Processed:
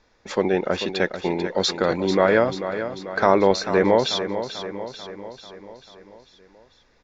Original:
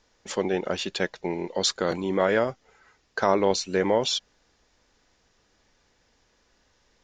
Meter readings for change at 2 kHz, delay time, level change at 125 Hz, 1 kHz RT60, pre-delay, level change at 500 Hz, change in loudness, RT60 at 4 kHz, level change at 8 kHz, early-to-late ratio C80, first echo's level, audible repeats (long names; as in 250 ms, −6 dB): +5.5 dB, 441 ms, +5.5 dB, no reverb audible, no reverb audible, +5.5 dB, +4.0 dB, no reverb audible, −3.0 dB, no reverb audible, −10.0 dB, 5